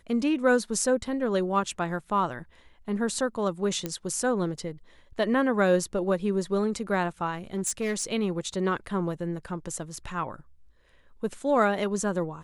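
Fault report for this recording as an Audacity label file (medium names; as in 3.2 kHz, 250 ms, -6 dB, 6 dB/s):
3.860000	3.860000	pop -15 dBFS
7.550000	8.040000	clipped -23.5 dBFS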